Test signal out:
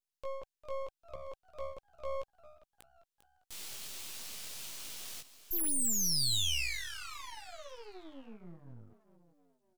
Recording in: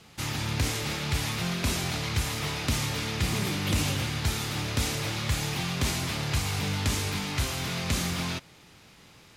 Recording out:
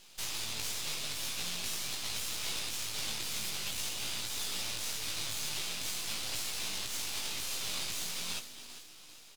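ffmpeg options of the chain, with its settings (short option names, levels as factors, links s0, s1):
-filter_complex "[0:a]highpass=120,aexciter=amount=4.3:drive=8.6:freq=2400,asplit=2[s0][s1];[s1]asplit=4[s2][s3][s4][s5];[s2]adelay=399,afreqshift=68,volume=0.188[s6];[s3]adelay=798,afreqshift=136,volume=0.0881[s7];[s4]adelay=1197,afreqshift=204,volume=0.0417[s8];[s5]adelay=1596,afreqshift=272,volume=0.0195[s9];[s6][s7][s8][s9]amix=inputs=4:normalize=0[s10];[s0][s10]amix=inputs=2:normalize=0,alimiter=limit=0.355:level=0:latency=1:release=220,highshelf=f=8600:g=-6.5,bandreject=f=780:w=12,flanger=delay=16.5:depth=2.8:speed=0.45,equalizer=f=240:w=0.39:g=-3.5,aeval=exprs='max(val(0),0)':c=same,volume=0.398"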